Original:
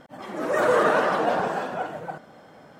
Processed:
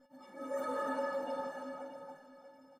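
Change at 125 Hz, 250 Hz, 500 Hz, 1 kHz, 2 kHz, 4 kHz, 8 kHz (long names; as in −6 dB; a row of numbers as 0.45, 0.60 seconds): below −25 dB, −13.0 dB, −15.0 dB, −16.5 dB, −19.5 dB, −18.0 dB, −15.5 dB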